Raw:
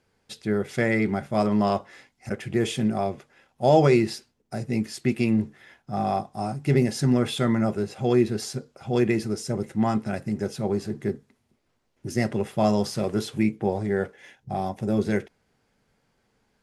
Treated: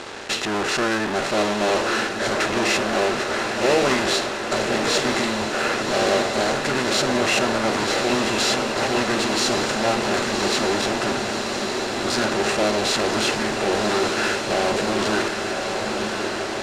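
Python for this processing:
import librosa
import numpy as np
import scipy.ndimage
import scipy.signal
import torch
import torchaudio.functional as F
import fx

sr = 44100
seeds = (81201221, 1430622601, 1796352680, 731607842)

p1 = fx.bin_compress(x, sr, power=0.6)
p2 = fx.fuzz(p1, sr, gain_db=40.0, gate_db=-49.0)
p3 = p1 + (p2 * librosa.db_to_amplitude(-5.0))
p4 = fx.low_shelf(p3, sr, hz=280.0, db=-7.0)
p5 = fx.formant_shift(p4, sr, semitones=-4)
p6 = scipy.signal.sosfilt(scipy.signal.butter(2, 8100.0, 'lowpass', fs=sr, output='sos'), p5)
p7 = fx.peak_eq(p6, sr, hz=150.0, db=-13.0, octaves=1.8)
p8 = p7 + fx.echo_diffused(p7, sr, ms=1117, feedback_pct=72, wet_db=-5.0, dry=0)
y = p8 * librosa.db_to_amplitude(-2.0)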